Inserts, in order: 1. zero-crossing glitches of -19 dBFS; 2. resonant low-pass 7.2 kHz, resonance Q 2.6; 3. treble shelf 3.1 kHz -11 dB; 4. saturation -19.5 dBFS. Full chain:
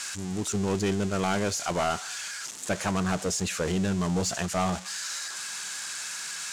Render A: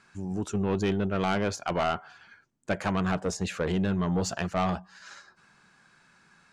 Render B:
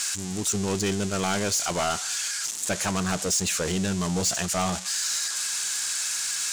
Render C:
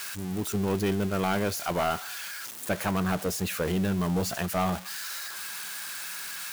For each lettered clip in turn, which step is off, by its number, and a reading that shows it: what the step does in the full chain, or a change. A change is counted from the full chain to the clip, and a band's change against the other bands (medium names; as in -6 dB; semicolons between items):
1, distortion -3 dB; 3, 8 kHz band +7.5 dB; 2, 8 kHz band -5.0 dB